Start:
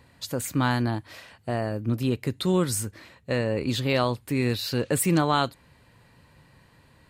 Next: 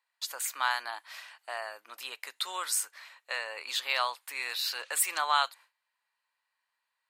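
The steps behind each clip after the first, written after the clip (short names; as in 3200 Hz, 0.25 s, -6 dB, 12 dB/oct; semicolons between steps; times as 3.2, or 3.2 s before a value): HPF 870 Hz 24 dB/oct; gate with hold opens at -49 dBFS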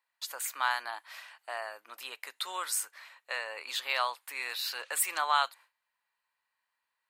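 bell 5400 Hz -3.5 dB 1.8 oct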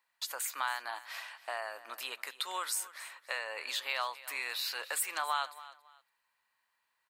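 compressor 2:1, threshold -41 dBFS, peak gain reduction 11 dB; feedback echo 0.278 s, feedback 26%, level -17 dB; gain +4 dB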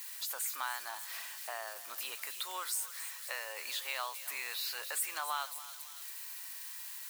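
switching spikes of -33 dBFS; gain -4 dB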